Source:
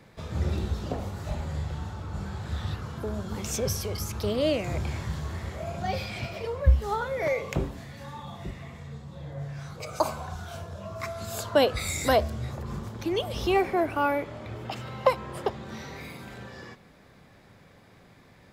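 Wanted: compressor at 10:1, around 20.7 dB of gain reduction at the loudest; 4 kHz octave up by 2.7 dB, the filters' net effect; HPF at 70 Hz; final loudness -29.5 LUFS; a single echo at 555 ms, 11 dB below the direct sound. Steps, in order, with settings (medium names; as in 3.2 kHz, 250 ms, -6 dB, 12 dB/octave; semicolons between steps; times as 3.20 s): high-pass 70 Hz; peaking EQ 4 kHz +3.5 dB; compression 10:1, threshold -38 dBFS; delay 555 ms -11 dB; trim +12.5 dB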